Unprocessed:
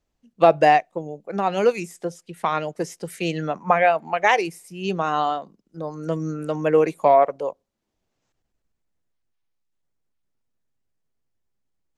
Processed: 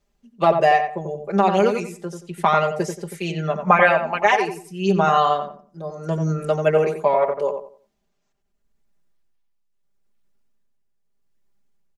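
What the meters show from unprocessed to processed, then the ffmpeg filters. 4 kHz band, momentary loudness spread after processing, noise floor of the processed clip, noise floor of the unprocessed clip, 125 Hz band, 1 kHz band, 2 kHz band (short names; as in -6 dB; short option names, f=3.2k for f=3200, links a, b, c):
+1.5 dB, 15 LU, -71 dBFS, -77 dBFS, +5.5 dB, +1.5 dB, +3.0 dB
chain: -filter_complex "[0:a]aecho=1:1:5:0.85,tremolo=f=0.78:d=0.55,asplit=2[a][b];[b]adelay=89,lowpass=f=1.7k:p=1,volume=-6dB,asplit=2[c][d];[d]adelay=89,lowpass=f=1.7k:p=1,volume=0.29,asplit=2[e][f];[f]adelay=89,lowpass=f=1.7k:p=1,volume=0.29,asplit=2[g][h];[h]adelay=89,lowpass=f=1.7k:p=1,volume=0.29[i];[a][c][e][g][i]amix=inputs=5:normalize=0,volume=3dB"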